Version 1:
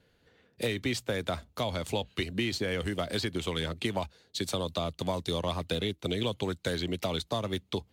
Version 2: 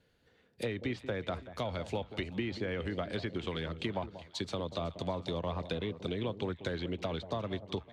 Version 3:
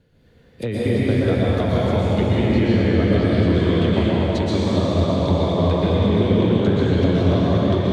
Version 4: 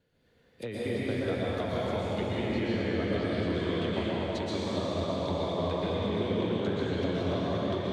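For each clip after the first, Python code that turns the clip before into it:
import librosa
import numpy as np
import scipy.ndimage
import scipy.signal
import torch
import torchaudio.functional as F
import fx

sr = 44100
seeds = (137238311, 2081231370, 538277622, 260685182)

y1 = fx.env_lowpass_down(x, sr, base_hz=2100.0, full_db=-26.5)
y1 = fx.echo_alternate(y1, sr, ms=186, hz=870.0, feedback_pct=62, wet_db=-12.0)
y1 = F.gain(torch.from_numpy(y1), -4.0).numpy()
y2 = fx.low_shelf(y1, sr, hz=450.0, db=11.5)
y2 = fx.rev_plate(y2, sr, seeds[0], rt60_s=4.4, hf_ratio=0.85, predelay_ms=105, drr_db=-8.5)
y2 = F.gain(torch.from_numpy(y2), 2.5).numpy()
y3 = fx.low_shelf(y2, sr, hz=250.0, db=-10.0)
y3 = F.gain(torch.from_numpy(y3), -8.0).numpy()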